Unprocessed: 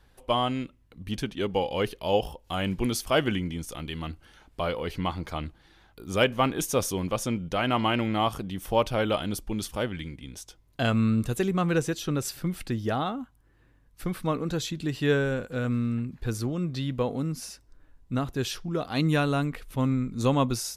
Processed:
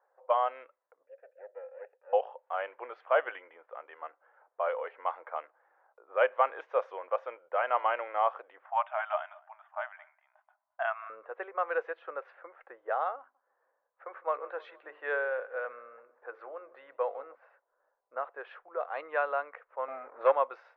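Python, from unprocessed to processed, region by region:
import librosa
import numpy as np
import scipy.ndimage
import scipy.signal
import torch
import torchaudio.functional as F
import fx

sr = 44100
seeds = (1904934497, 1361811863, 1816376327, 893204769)

y = fx.chain(x, sr, fx.lower_of_two(delay_ms=0.8),
    fx.vowel_filter(vowel='e'),
    fx.peak_eq(hz=2800.0, db=-2.0, octaves=0.37), at=(1.06, 2.13))
y = fx.chain(y, sr, fx.brickwall_bandpass(low_hz=600.0, high_hz=3700.0),
    fx.echo_single(ms=217, db=-23.5), at=(8.65, 11.1))
y = fx.chain(y, sr, fx.high_shelf(hz=4600.0, db=6.5),
    fx.hum_notches(base_hz=50, count=9),
    fx.echo_feedback(ms=155, feedback_pct=55, wet_db=-21.5), at=(13.19, 17.35))
y = fx.chain(y, sr, fx.low_shelf(hz=160.0, db=4.0),
    fx.leveller(passes=2), at=(19.88, 20.32))
y = scipy.signal.sosfilt(scipy.signal.ellip(4, 1.0, 60, 520.0, 'highpass', fs=sr, output='sos'), y)
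y = fx.env_lowpass(y, sr, base_hz=980.0, full_db=-24.0)
y = scipy.signal.sosfilt(scipy.signal.butter(4, 1800.0, 'lowpass', fs=sr, output='sos'), y)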